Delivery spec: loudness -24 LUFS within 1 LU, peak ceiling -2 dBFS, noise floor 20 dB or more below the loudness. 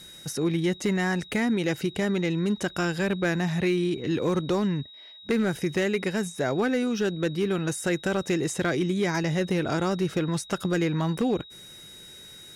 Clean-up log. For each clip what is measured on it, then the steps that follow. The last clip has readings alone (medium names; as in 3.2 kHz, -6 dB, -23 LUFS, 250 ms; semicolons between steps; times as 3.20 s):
clipped samples 1.0%; clipping level -18.0 dBFS; steady tone 3.8 kHz; tone level -45 dBFS; loudness -26.5 LUFS; peak level -18.0 dBFS; loudness target -24.0 LUFS
-> clip repair -18 dBFS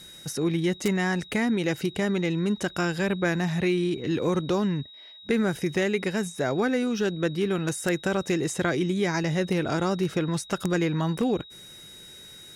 clipped samples 0.0%; steady tone 3.8 kHz; tone level -45 dBFS
-> band-stop 3.8 kHz, Q 30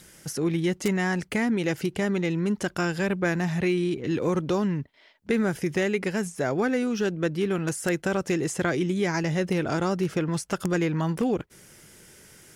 steady tone not found; loudness -26.5 LUFS; peak level -9.0 dBFS; loudness target -24.0 LUFS
-> trim +2.5 dB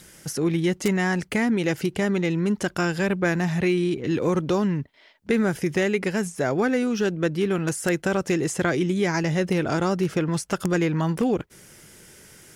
loudness -24.0 LUFS; peak level -6.5 dBFS; noise floor -53 dBFS